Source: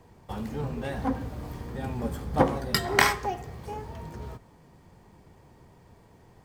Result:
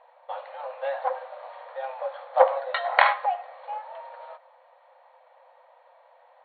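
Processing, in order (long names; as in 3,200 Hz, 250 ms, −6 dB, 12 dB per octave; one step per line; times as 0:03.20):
linear-phase brick-wall band-pass 500–4,400 Hz
spectral tilt −4 dB per octave
level +5 dB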